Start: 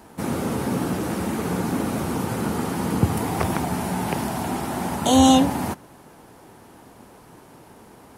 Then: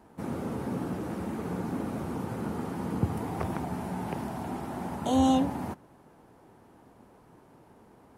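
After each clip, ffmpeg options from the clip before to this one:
-af "highshelf=f=2.2k:g=-10,volume=-8dB"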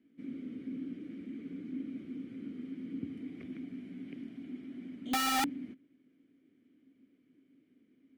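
-filter_complex "[0:a]asplit=3[a][b][c];[a]bandpass=f=270:t=q:w=8,volume=0dB[d];[b]bandpass=f=2.29k:t=q:w=8,volume=-6dB[e];[c]bandpass=f=3.01k:t=q:w=8,volume=-9dB[f];[d][e][f]amix=inputs=3:normalize=0,aeval=exprs='(mod(18.8*val(0)+1,2)-1)/18.8':c=same"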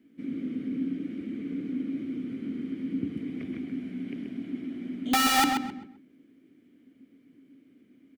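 -filter_complex "[0:a]asplit=2[a][b];[b]adelay=131,lowpass=f=3.8k:p=1,volume=-5dB,asplit=2[c][d];[d]adelay=131,lowpass=f=3.8k:p=1,volume=0.28,asplit=2[e][f];[f]adelay=131,lowpass=f=3.8k:p=1,volume=0.28,asplit=2[g][h];[h]adelay=131,lowpass=f=3.8k:p=1,volume=0.28[i];[a][c][e][g][i]amix=inputs=5:normalize=0,volume=7.5dB"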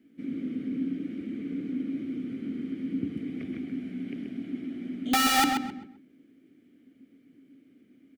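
-af "bandreject=f=1k:w=7.1"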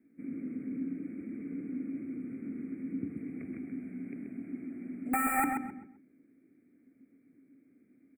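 -af "asuperstop=centerf=4400:order=20:qfactor=0.85,volume=-5.5dB"

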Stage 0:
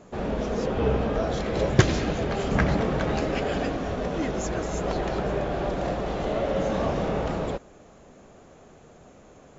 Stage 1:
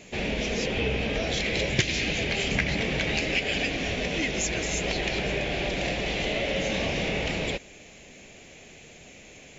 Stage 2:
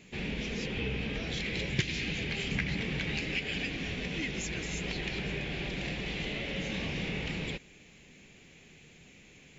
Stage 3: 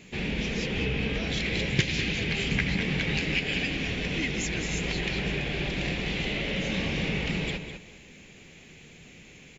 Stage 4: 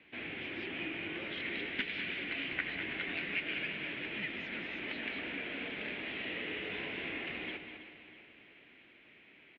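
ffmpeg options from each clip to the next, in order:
-af "highshelf=f=1.7k:t=q:w=3:g=10.5,acompressor=threshold=-25dB:ratio=2.5"
-af "equalizer=f=160:t=o:w=0.67:g=5,equalizer=f=630:t=o:w=0.67:g=-10,equalizer=f=6.3k:t=o:w=0.67:g=-5,volume=-6.5dB"
-filter_complex "[0:a]asplit=2[a][b];[b]adelay=201,lowpass=f=4.8k:p=1,volume=-8dB,asplit=2[c][d];[d]adelay=201,lowpass=f=4.8k:p=1,volume=0.26,asplit=2[e][f];[f]adelay=201,lowpass=f=4.8k:p=1,volume=0.26[g];[a][c][e][g]amix=inputs=4:normalize=0,volume=5dB"
-af "highpass=f=360:t=q:w=0.5412,highpass=f=360:t=q:w=1.307,lowpass=f=3.4k:t=q:w=0.5176,lowpass=f=3.4k:t=q:w=0.7071,lowpass=f=3.4k:t=q:w=1.932,afreqshift=-120,aecho=1:1:323|646|969|1292|1615|1938:0.224|0.121|0.0653|0.0353|0.019|0.0103,volume=-7dB"

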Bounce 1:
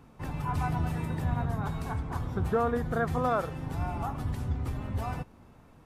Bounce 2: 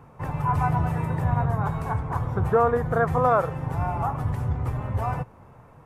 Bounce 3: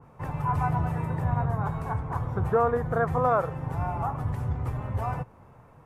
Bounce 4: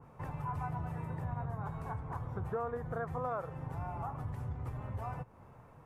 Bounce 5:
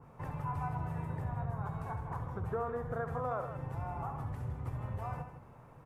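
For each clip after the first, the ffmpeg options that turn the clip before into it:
-af "equalizer=f=125:t=o:w=1:g=10,equalizer=f=250:t=o:w=1:g=-4,equalizer=f=500:t=o:w=1:g=7,equalizer=f=1k:t=o:w=1:g=8,equalizer=f=2k:t=o:w=1:g=4,equalizer=f=4k:t=o:w=1:g=-6"
-af "adynamicequalizer=threshold=0.0112:dfrequency=2000:dqfactor=0.7:tfrequency=2000:tqfactor=0.7:attack=5:release=100:ratio=0.375:range=1.5:mode=cutabove:tftype=highshelf,volume=-3dB"
-af "acompressor=threshold=-38dB:ratio=2,volume=-3.5dB"
-af "aecho=1:1:67|159:0.316|0.316"

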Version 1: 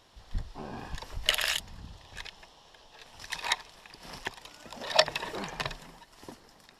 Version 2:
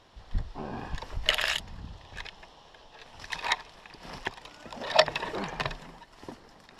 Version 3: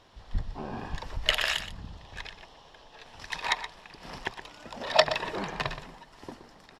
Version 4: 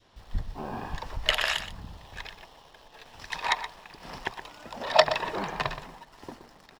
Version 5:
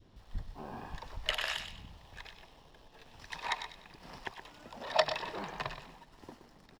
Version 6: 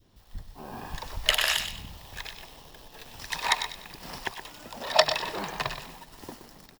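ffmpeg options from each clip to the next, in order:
-af "aemphasis=mode=reproduction:type=50kf,areverse,acompressor=mode=upward:threshold=-53dB:ratio=2.5,areverse,volume=3.5dB"
-filter_complex "[0:a]asplit=2[a][b];[b]adelay=122.4,volume=-11dB,highshelf=f=4k:g=-2.76[c];[a][c]amix=inputs=2:normalize=0"
-filter_complex "[0:a]adynamicequalizer=threshold=0.00631:dfrequency=920:dqfactor=1:tfrequency=920:tqfactor=1:attack=5:release=100:ratio=0.375:range=2:mode=boostabove:tftype=bell,asplit=2[a][b];[b]acrusher=bits=7:mix=0:aa=0.000001,volume=-10.5dB[c];[a][c]amix=inputs=2:normalize=0,volume=-2.5dB"
-filter_complex "[0:a]acrossover=split=380|800|2200[a][b][c][d];[a]acompressor=mode=upward:threshold=-41dB:ratio=2.5[e];[d]asplit=2[f][g];[g]adelay=98,lowpass=f=4.5k:p=1,volume=-4.5dB,asplit=2[h][i];[i]adelay=98,lowpass=f=4.5k:p=1,volume=0.47,asplit=2[j][k];[k]adelay=98,lowpass=f=4.5k:p=1,volume=0.47,asplit=2[l][m];[m]adelay=98,lowpass=f=4.5k:p=1,volume=0.47,asplit=2[n][o];[o]adelay=98,lowpass=f=4.5k:p=1,volume=0.47,asplit=2[p][q];[q]adelay=98,lowpass=f=4.5k:p=1,volume=0.47[r];[f][h][j][l][n][p][r]amix=inputs=7:normalize=0[s];[e][b][c][s]amix=inputs=4:normalize=0,volume=-8.5dB"
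-af "dynaudnorm=f=510:g=3:m=10dB,aemphasis=mode=production:type=50fm,volume=-1.5dB"

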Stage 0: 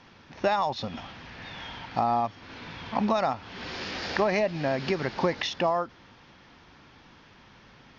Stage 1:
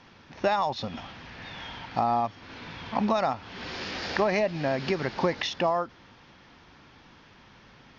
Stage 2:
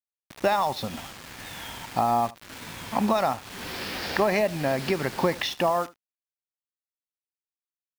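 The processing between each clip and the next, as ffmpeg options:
-af anull
-af "aeval=exprs='sgn(val(0))*max(abs(val(0))-0.0015,0)':c=same,acrusher=bits=6:mix=0:aa=0.000001,aecho=1:1:76:0.0944,volume=2dB"

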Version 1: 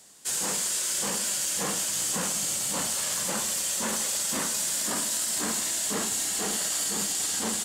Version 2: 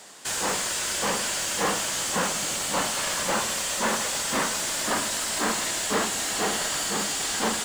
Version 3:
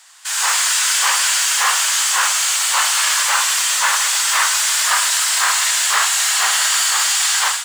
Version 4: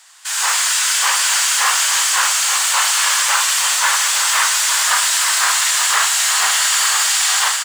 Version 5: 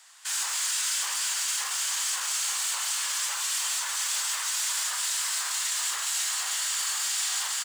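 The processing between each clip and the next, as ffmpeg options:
-filter_complex "[0:a]asplit=2[a][b];[b]highpass=f=720:p=1,volume=17dB,asoftclip=type=tanh:threshold=-16.5dB[c];[a][c]amix=inputs=2:normalize=0,lowpass=f=1.7k:p=1,volume=-6dB,acrusher=bits=5:mode=log:mix=0:aa=0.000001,volume=5dB"
-af "highpass=f=1k:w=0.5412,highpass=f=1k:w=1.3066,dynaudnorm=f=220:g=3:m=12.5dB"
-af "aecho=1:1:878:0.447"
-filter_complex "[0:a]alimiter=limit=-12dB:level=0:latency=1:release=44,acrossover=split=310|3000[a][b][c];[b]acompressor=threshold=-34dB:ratio=2[d];[a][d][c]amix=inputs=3:normalize=0,volume=-7.5dB"

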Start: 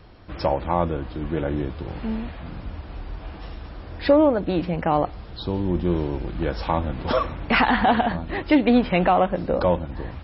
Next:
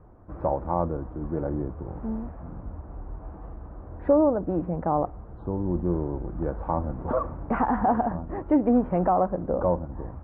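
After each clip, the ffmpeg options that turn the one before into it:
-af "lowpass=f=1.2k:w=0.5412,lowpass=f=1.2k:w=1.3066,volume=-3.5dB"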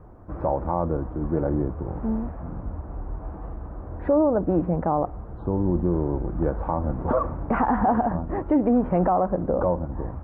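-af "alimiter=limit=-17.5dB:level=0:latency=1:release=79,volume=5dB"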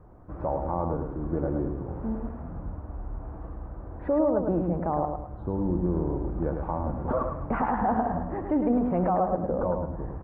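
-af "aecho=1:1:106|212|318|424:0.562|0.197|0.0689|0.0241,volume=-5dB"

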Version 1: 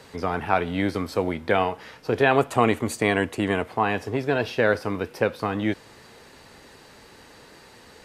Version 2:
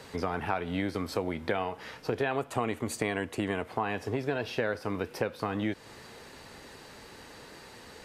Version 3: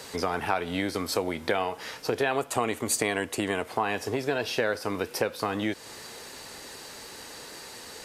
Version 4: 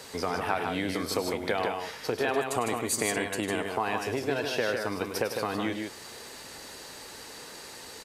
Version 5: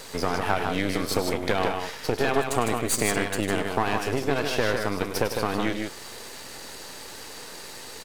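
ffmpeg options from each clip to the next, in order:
-af "acompressor=threshold=-28dB:ratio=4"
-af "bass=f=250:g=-6,treble=f=4k:g=9,volume=4dB"
-af "aecho=1:1:102|154.5:0.282|0.562,volume=-2.5dB"
-af "aeval=exprs='if(lt(val(0),0),0.251*val(0),val(0))':c=same,volume=7dB"

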